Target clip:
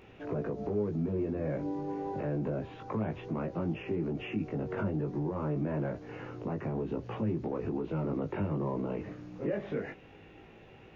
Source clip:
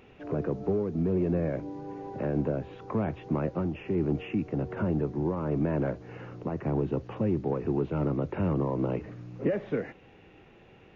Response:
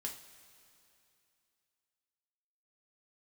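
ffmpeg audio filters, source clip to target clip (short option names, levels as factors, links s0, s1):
-af "alimiter=level_in=1.26:limit=0.0631:level=0:latency=1:release=69,volume=0.794,flanger=delay=18:depth=2.4:speed=0.27,volume=1.58"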